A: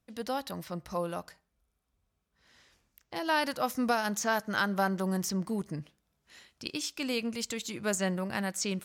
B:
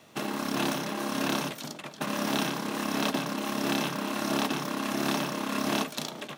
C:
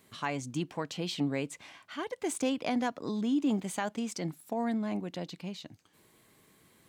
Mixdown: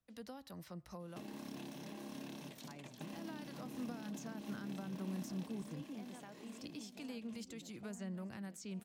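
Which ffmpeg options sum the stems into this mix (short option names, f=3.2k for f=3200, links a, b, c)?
-filter_complex "[0:a]acrossover=split=210[a][b];[b]acompressor=threshold=-31dB:ratio=2.5[c];[a][c]amix=inputs=2:normalize=0,volume=-9.5dB,asplit=2[d][e];[1:a]equalizer=f=1.3k:w=3.2:g=-11,acompressor=threshold=-32dB:ratio=6,adelay=1000,volume=-9.5dB,afade=t=out:st=5.08:d=0.8:silence=0.281838[f];[2:a]adelay=2450,volume=-17.5dB,asplit=2[g][h];[h]volume=-5.5dB[i];[e]apad=whole_len=411761[j];[g][j]sidechaincompress=threshold=-46dB:ratio=8:attack=16:release=575[k];[i]aecho=0:1:857|1714|2571|3428|4285:1|0.39|0.152|0.0593|0.0231[l];[d][f][k][l]amix=inputs=4:normalize=0,acrossover=split=310[m][n];[n]acompressor=threshold=-52dB:ratio=4[o];[m][o]amix=inputs=2:normalize=0"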